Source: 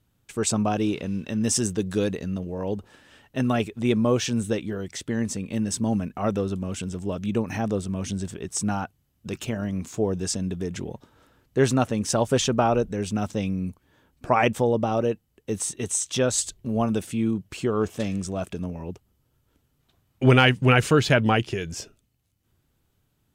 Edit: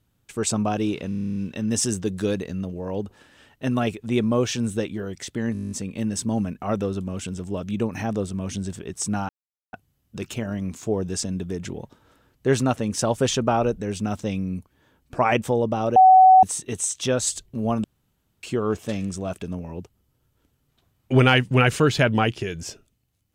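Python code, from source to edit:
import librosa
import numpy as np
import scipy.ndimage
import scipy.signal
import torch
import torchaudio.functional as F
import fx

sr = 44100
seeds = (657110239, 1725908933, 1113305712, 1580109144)

y = fx.edit(x, sr, fx.stutter(start_s=1.09, slice_s=0.03, count=10),
    fx.stutter(start_s=5.26, slice_s=0.02, count=10),
    fx.insert_silence(at_s=8.84, length_s=0.44),
    fx.bleep(start_s=15.07, length_s=0.47, hz=752.0, db=-8.0),
    fx.room_tone_fill(start_s=16.95, length_s=0.59), tone=tone)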